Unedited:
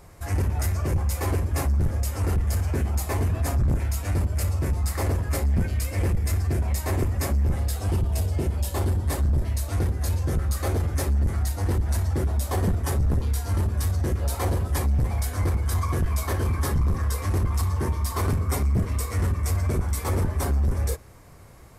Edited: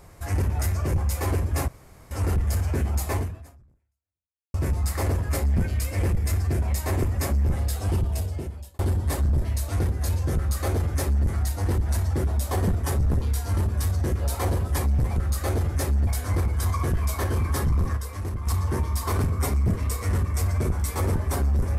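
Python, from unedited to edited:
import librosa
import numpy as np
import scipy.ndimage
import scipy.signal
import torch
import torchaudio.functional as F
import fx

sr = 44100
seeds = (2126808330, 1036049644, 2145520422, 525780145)

y = fx.edit(x, sr, fx.room_tone_fill(start_s=1.68, length_s=0.43),
    fx.fade_out_span(start_s=3.17, length_s=1.37, curve='exp'),
    fx.fade_out_span(start_s=8.0, length_s=0.79),
    fx.duplicate(start_s=10.35, length_s=0.91, to_s=15.16),
    fx.clip_gain(start_s=17.06, length_s=0.5, db=-6.5), tone=tone)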